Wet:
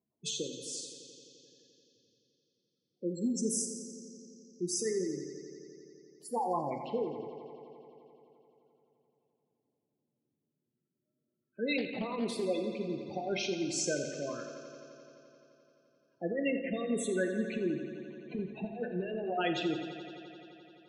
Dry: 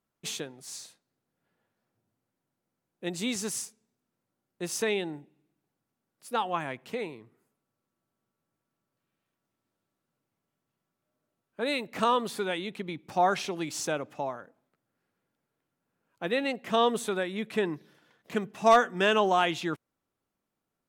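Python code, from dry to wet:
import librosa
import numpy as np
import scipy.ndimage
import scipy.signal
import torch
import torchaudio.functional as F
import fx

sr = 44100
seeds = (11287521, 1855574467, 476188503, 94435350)

p1 = fx.filter_lfo_notch(x, sr, shape='saw_down', hz=0.34, low_hz=710.0, high_hz=1800.0, q=0.85)
p2 = fx.spec_gate(p1, sr, threshold_db=-10, keep='strong')
p3 = fx.quant_float(p2, sr, bits=8, at=(3.08, 3.52))
p4 = fx.highpass(p3, sr, hz=160.0, slope=6)
p5 = fx.over_compress(p4, sr, threshold_db=-32.0, ratio=-0.5)
p6 = p5 + fx.echo_bbd(p5, sr, ms=86, stages=4096, feedback_pct=84, wet_db=-12.5, dry=0)
p7 = fx.rev_plate(p6, sr, seeds[0], rt60_s=0.95, hf_ratio=0.95, predelay_ms=0, drr_db=6.5)
y = fx.doppler_dist(p7, sr, depth_ms=0.17, at=(11.78, 12.45))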